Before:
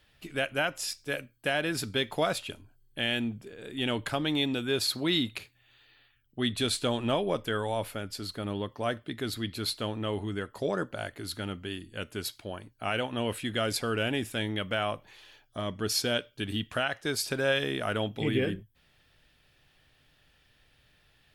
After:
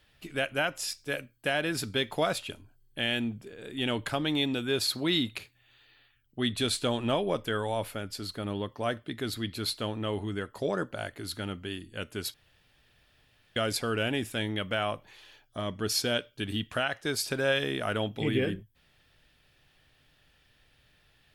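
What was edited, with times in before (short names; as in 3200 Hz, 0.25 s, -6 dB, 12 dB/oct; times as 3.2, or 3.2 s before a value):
12.34–13.56 room tone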